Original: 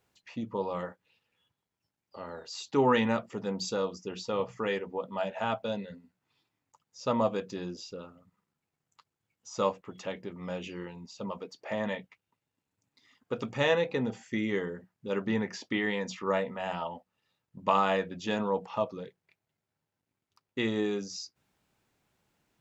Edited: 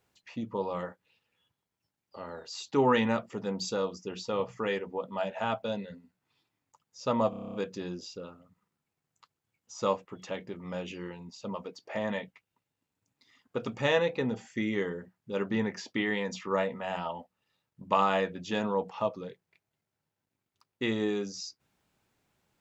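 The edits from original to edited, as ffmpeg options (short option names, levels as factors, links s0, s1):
-filter_complex "[0:a]asplit=9[s0][s1][s2][s3][s4][s5][s6][s7][s8];[s0]atrim=end=7.332[s9];[s1]atrim=start=7.298:end=7.332[s10];[s2]atrim=start=7.298:end=7.332[s11];[s3]atrim=start=7.298:end=7.332[s12];[s4]atrim=start=7.298:end=7.332[s13];[s5]atrim=start=7.298:end=7.332[s14];[s6]atrim=start=7.298:end=7.332[s15];[s7]atrim=start=7.298:end=7.332[s16];[s8]atrim=start=7.298[s17];[s9][s10]acrossfade=d=0.004:c1=hsin:c2=hsin[s18];[s18][s11]acrossfade=d=0.004:c1=hsin:c2=hsin[s19];[s19][s12]acrossfade=d=0.004:c1=hsin:c2=hsin[s20];[s20][s13]acrossfade=d=0.004:c1=hsin:c2=hsin[s21];[s21][s14]acrossfade=d=0.004:c1=hsin:c2=hsin[s22];[s22][s15]acrossfade=d=0.004:c1=hsin:c2=hsin[s23];[s23][s16]acrossfade=d=0.004:c1=hsin:c2=hsin[s24];[s24][s17]acrossfade=d=0.004:c1=hsin:c2=hsin"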